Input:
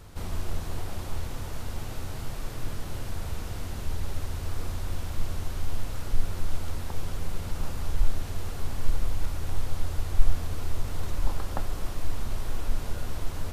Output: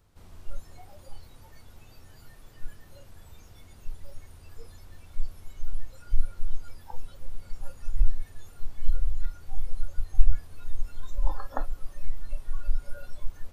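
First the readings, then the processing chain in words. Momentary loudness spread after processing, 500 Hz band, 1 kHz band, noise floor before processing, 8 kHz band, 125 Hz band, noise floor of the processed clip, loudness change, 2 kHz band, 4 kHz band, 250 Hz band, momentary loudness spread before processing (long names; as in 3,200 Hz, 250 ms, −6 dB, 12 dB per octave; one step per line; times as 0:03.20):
21 LU, −9.0 dB, −6.0 dB, −36 dBFS, can't be measured, −6.0 dB, −51 dBFS, −2.5 dB, −10.0 dB, −13.5 dB, −13.5 dB, 5 LU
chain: noise reduction from a noise print of the clip's start 19 dB
level +2.5 dB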